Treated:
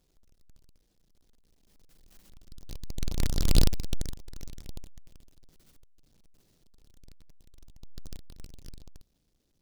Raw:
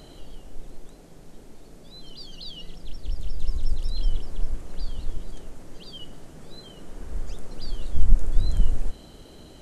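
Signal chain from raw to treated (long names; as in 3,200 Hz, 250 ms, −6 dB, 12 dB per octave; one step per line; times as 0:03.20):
each half-wave held at its own peak
source passing by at 0:03.55, 43 m/s, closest 5.8 metres
short delay modulated by noise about 4,600 Hz, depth 0.27 ms
level −1 dB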